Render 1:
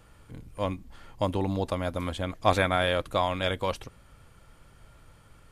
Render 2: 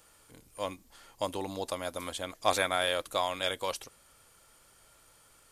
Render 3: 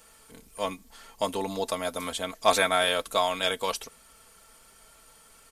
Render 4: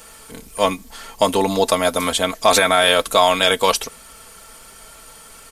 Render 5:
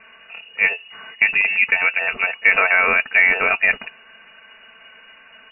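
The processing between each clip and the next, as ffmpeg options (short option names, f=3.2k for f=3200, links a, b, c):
-af "bass=f=250:g=-13,treble=f=4k:g=12,volume=-4dB"
-af "aecho=1:1:4.5:0.59,volume=4dB"
-af "alimiter=level_in=14dB:limit=-1dB:release=50:level=0:latency=1,volume=-1dB"
-af "lowpass=f=2.5k:t=q:w=0.5098,lowpass=f=2.5k:t=q:w=0.6013,lowpass=f=2.5k:t=q:w=0.9,lowpass=f=2.5k:t=q:w=2.563,afreqshift=-2900"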